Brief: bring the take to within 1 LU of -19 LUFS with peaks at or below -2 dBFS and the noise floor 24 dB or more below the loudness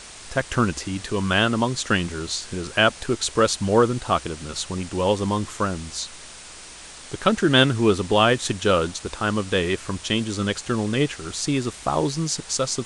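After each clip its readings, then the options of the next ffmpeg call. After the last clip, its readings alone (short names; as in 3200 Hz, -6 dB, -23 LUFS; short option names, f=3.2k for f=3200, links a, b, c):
noise floor -42 dBFS; noise floor target -47 dBFS; loudness -22.5 LUFS; peak -2.5 dBFS; loudness target -19.0 LUFS
-> -af "afftdn=nr=6:nf=-42"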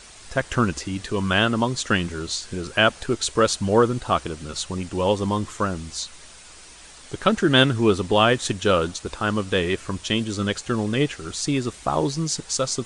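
noise floor -45 dBFS; noise floor target -47 dBFS
-> -af "afftdn=nr=6:nf=-45"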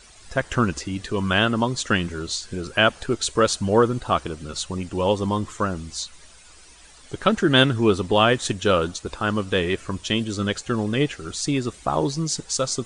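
noise floor -48 dBFS; loudness -23.0 LUFS; peak -2.5 dBFS; loudness target -19.0 LUFS
-> -af "volume=4dB,alimiter=limit=-2dB:level=0:latency=1"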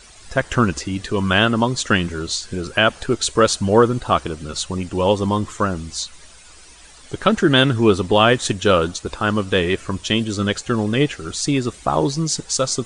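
loudness -19.0 LUFS; peak -2.0 dBFS; noise floor -44 dBFS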